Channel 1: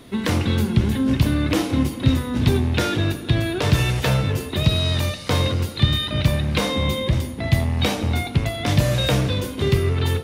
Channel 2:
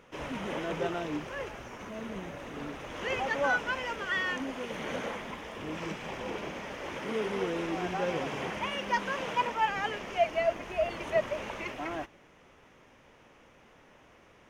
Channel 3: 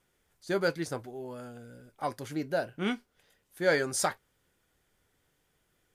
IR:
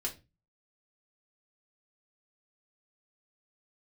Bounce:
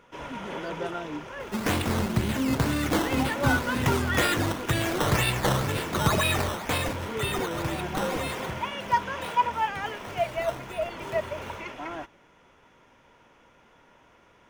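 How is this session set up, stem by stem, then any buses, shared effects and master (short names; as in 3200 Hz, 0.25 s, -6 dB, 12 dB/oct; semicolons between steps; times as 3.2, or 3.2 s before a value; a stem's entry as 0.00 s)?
6.46 s -2.5 dB -> 7.14 s -9.5 dB -> 8.28 s -9.5 dB -> 9.01 s -19.5 dB, 1.40 s, no send, tilt +2 dB/oct; decimation with a swept rate 13×, swing 100% 2 Hz
-1.0 dB, 0.00 s, no send, small resonant body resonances 960/1400/3400 Hz, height 9 dB
-15.5 dB, 0.00 s, no send, dry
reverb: off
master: dry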